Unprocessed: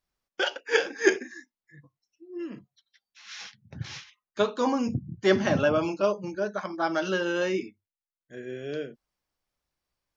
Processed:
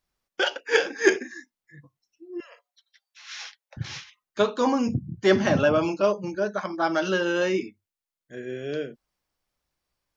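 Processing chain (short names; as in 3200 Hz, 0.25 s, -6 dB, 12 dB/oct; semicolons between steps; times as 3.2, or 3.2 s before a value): 2.4–3.77 steep high-pass 500 Hz 96 dB/oct; in parallel at -7 dB: soft clip -16.5 dBFS, distortion -15 dB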